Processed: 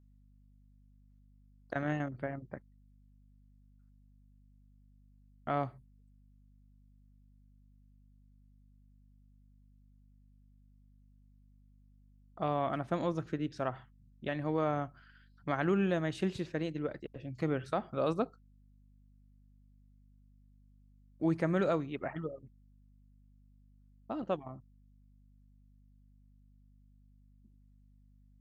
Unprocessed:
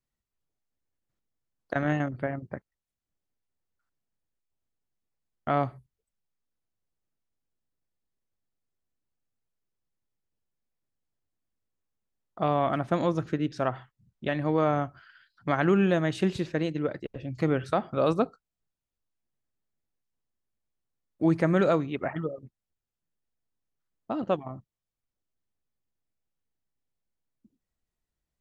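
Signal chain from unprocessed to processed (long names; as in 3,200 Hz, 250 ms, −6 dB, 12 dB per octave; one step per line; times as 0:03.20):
mains hum 50 Hz, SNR 23 dB
level −7 dB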